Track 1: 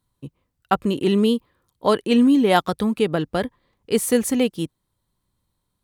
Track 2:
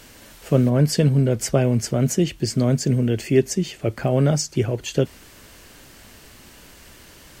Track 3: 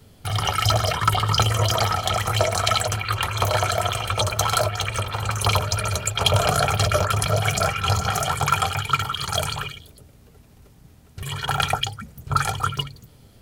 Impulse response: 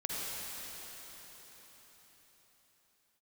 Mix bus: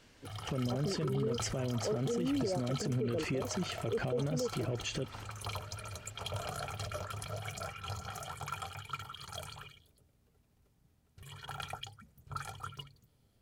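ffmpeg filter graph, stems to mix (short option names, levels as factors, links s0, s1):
-filter_complex "[0:a]lowpass=f=490:t=q:w=4.9,volume=0.126[s0];[1:a]lowpass=6000,agate=range=0.224:threshold=0.01:ratio=16:detection=peak,acompressor=threshold=0.0562:ratio=6,volume=0.841[s1];[2:a]volume=0.1[s2];[s0][s1][s2]amix=inputs=3:normalize=0,alimiter=level_in=1.26:limit=0.0631:level=0:latency=1:release=54,volume=0.794"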